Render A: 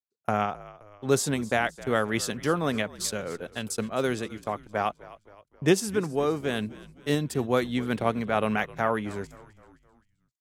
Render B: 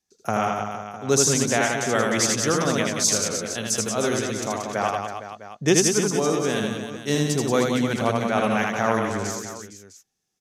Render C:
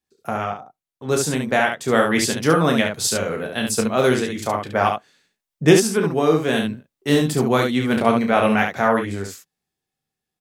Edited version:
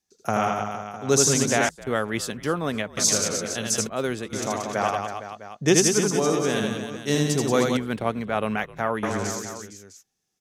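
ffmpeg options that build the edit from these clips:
-filter_complex "[0:a]asplit=3[s0][s1][s2];[1:a]asplit=4[s3][s4][s5][s6];[s3]atrim=end=1.692[s7];[s0]atrim=start=1.688:end=2.972[s8];[s4]atrim=start=2.968:end=3.872[s9];[s1]atrim=start=3.868:end=4.332[s10];[s5]atrim=start=4.328:end=7.772[s11];[s2]atrim=start=7.768:end=9.032[s12];[s6]atrim=start=9.028[s13];[s7][s8]acrossfade=d=0.004:c1=hsin:c2=hsin[s14];[s14][s9]acrossfade=d=0.004:c1=hsin:c2=hsin[s15];[s15][s10]acrossfade=d=0.004:c1=hsin:c2=hsin[s16];[s16][s11]acrossfade=d=0.004:c1=hsin:c2=hsin[s17];[s17][s12]acrossfade=d=0.004:c1=hsin:c2=hsin[s18];[s18][s13]acrossfade=d=0.004:c1=hsin:c2=hsin"

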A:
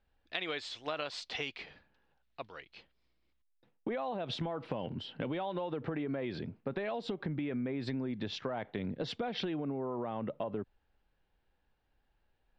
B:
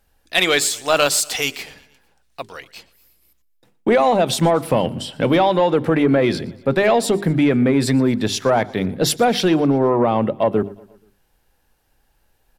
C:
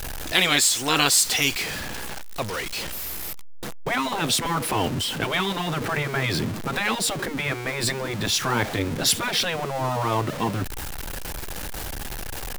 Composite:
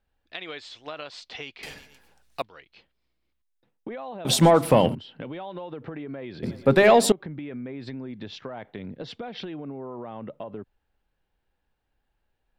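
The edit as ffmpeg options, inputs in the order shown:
-filter_complex "[1:a]asplit=3[s0][s1][s2];[0:a]asplit=4[s3][s4][s5][s6];[s3]atrim=end=1.632[s7];[s0]atrim=start=1.628:end=2.422[s8];[s4]atrim=start=2.418:end=4.252[s9];[s1]atrim=start=4.248:end=4.952[s10];[s5]atrim=start=4.948:end=6.432[s11];[s2]atrim=start=6.428:end=7.122[s12];[s6]atrim=start=7.118[s13];[s7][s8]acrossfade=d=0.004:c1=hsin:c2=hsin[s14];[s14][s9]acrossfade=d=0.004:c1=hsin:c2=hsin[s15];[s15][s10]acrossfade=d=0.004:c1=hsin:c2=hsin[s16];[s16][s11]acrossfade=d=0.004:c1=hsin:c2=hsin[s17];[s17][s12]acrossfade=d=0.004:c1=hsin:c2=hsin[s18];[s18][s13]acrossfade=d=0.004:c1=hsin:c2=hsin"

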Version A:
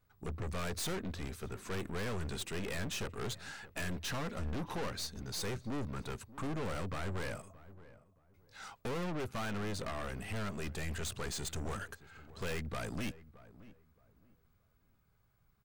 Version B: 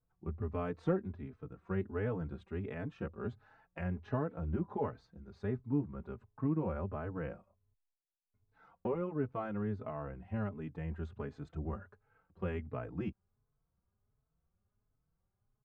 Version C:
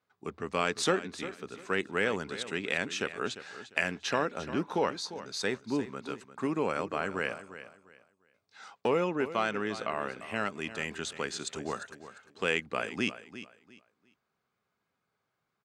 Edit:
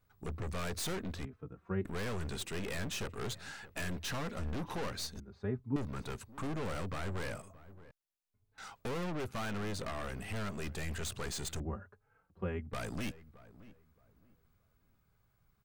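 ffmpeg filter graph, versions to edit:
-filter_complex "[1:a]asplit=4[s0][s1][s2][s3];[0:a]asplit=5[s4][s5][s6][s7][s8];[s4]atrim=end=1.252[s9];[s0]atrim=start=1.248:end=1.852[s10];[s5]atrim=start=1.848:end=5.202[s11];[s1]atrim=start=5.198:end=5.762[s12];[s6]atrim=start=5.758:end=7.912[s13];[s2]atrim=start=7.908:end=8.582[s14];[s7]atrim=start=8.578:end=11.602[s15];[s3]atrim=start=11.598:end=12.732[s16];[s8]atrim=start=12.728[s17];[s9][s10]acrossfade=d=0.004:c1=hsin:c2=hsin[s18];[s18][s11]acrossfade=d=0.004:c1=hsin:c2=hsin[s19];[s19][s12]acrossfade=d=0.004:c1=hsin:c2=hsin[s20];[s20][s13]acrossfade=d=0.004:c1=hsin:c2=hsin[s21];[s21][s14]acrossfade=d=0.004:c1=hsin:c2=hsin[s22];[s22][s15]acrossfade=d=0.004:c1=hsin:c2=hsin[s23];[s23][s16]acrossfade=d=0.004:c1=hsin:c2=hsin[s24];[s24][s17]acrossfade=d=0.004:c1=hsin:c2=hsin"

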